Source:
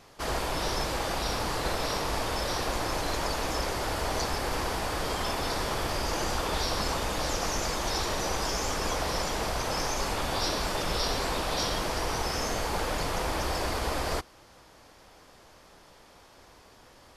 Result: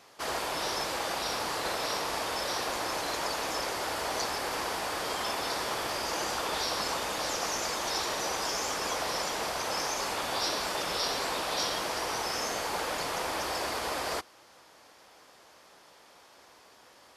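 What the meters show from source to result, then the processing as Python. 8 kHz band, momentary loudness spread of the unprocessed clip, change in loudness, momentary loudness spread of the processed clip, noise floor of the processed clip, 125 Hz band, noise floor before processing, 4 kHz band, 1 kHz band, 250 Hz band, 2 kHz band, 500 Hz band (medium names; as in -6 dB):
0.0 dB, 2 LU, -1.0 dB, 2 LU, -57 dBFS, -13.5 dB, -55 dBFS, 0.0 dB, -1.0 dB, -6.0 dB, -0.5 dB, -2.5 dB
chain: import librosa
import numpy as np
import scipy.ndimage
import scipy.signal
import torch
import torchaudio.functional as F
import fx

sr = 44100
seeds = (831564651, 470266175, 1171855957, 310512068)

y = fx.highpass(x, sr, hz=460.0, slope=6)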